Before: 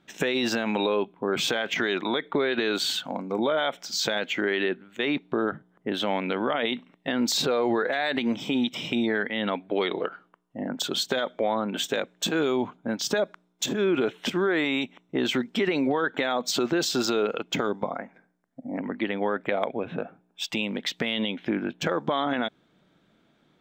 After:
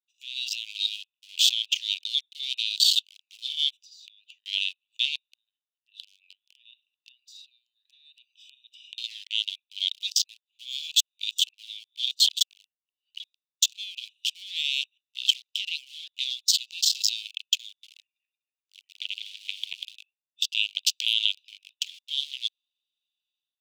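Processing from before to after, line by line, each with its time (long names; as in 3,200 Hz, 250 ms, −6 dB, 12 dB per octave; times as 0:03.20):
0:02.06–0:03.24: high-pass filter 260 Hz
0:03.82–0:04.46: downward compressor 10 to 1, threshold −33 dBFS
0:05.20–0:08.98: downward compressor 8 to 1, threshold −32 dBFS
0:10.03–0:13.20: reverse
0:18.01–0:19.97: feedback delay that plays each chunk backwards 123 ms, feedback 51%, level −3 dB
0:20.67–0:21.42: ceiling on every frequency bin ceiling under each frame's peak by 19 dB
whole clip: adaptive Wiener filter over 41 samples; Butterworth high-pass 2,800 Hz 72 dB per octave; automatic gain control gain up to 15.5 dB; level −3 dB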